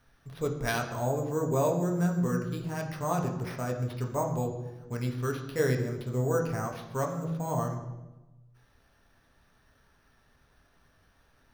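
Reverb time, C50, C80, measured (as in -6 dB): 1.1 s, 7.5 dB, 9.5 dB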